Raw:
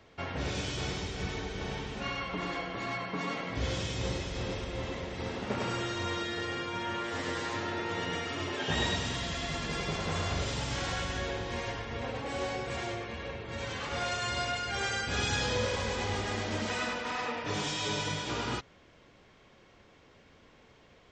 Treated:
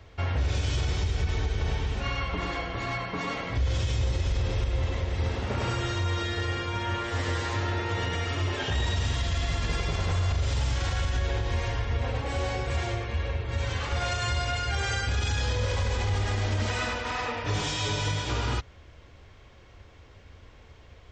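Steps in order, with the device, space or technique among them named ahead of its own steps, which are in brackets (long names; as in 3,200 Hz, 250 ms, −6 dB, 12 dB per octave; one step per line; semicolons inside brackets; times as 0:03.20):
car stereo with a boomy subwoofer (low shelf with overshoot 120 Hz +11.5 dB, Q 1.5; brickwall limiter −22.5 dBFS, peak gain reduction 10 dB)
level +3.5 dB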